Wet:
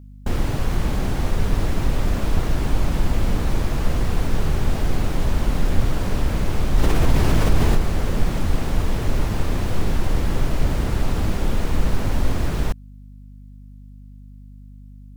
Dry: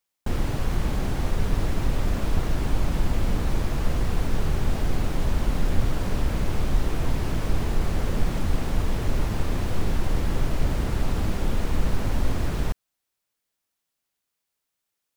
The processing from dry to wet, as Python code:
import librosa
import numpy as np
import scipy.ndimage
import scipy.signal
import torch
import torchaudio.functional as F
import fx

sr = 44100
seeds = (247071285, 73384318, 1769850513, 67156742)

y = fx.add_hum(x, sr, base_hz=50, snr_db=23)
y = fx.env_flatten(y, sr, amount_pct=50, at=(6.77, 7.76), fade=0.02)
y = y * librosa.db_to_amplitude(3.5)